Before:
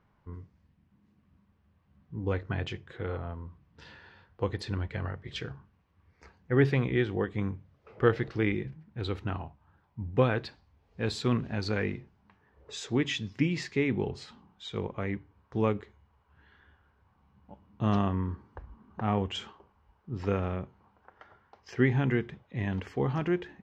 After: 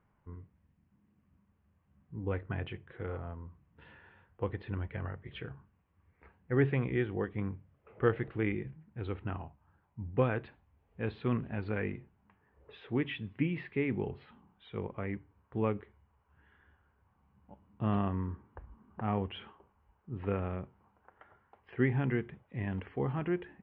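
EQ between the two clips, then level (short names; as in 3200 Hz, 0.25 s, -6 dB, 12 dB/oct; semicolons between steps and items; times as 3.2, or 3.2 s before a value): steep low-pass 3100 Hz 36 dB/oct; air absorption 100 m; -4.0 dB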